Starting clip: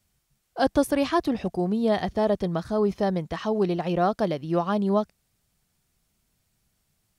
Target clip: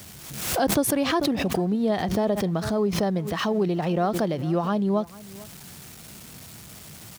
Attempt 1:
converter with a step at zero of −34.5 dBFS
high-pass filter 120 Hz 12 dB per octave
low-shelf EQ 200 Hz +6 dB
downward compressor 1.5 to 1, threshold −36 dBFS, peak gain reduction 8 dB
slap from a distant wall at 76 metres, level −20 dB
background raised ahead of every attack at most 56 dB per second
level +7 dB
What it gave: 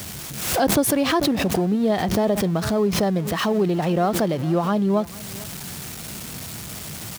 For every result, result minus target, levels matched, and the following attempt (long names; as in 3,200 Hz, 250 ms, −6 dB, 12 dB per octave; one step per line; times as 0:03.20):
converter with a step at zero: distortion +9 dB; downward compressor: peak gain reduction −2.5 dB
converter with a step at zero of −44.5 dBFS
high-pass filter 120 Hz 12 dB per octave
low-shelf EQ 200 Hz +6 dB
downward compressor 1.5 to 1, threshold −36 dBFS, peak gain reduction 8 dB
slap from a distant wall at 76 metres, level −20 dB
background raised ahead of every attack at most 56 dB per second
level +7 dB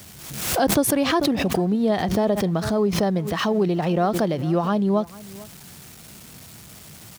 downward compressor: peak gain reduction −3 dB
converter with a step at zero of −44.5 dBFS
high-pass filter 120 Hz 12 dB per octave
low-shelf EQ 200 Hz +6 dB
downward compressor 1.5 to 1, threshold −44.5 dBFS, peak gain reduction 11 dB
slap from a distant wall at 76 metres, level −20 dB
background raised ahead of every attack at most 56 dB per second
level +7 dB